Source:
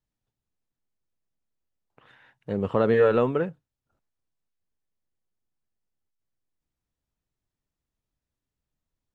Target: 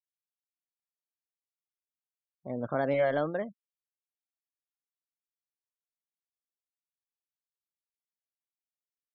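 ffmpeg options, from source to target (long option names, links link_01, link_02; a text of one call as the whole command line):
ffmpeg -i in.wav -af "afftfilt=real='re*gte(hypot(re,im),0.0158)':imag='im*gte(hypot(re,im),0.0158)':win_size=1024:overlap=0.75,asetrate=53981,aresample=44100,atempo=0.816958,volume=-7.5dB" out.wav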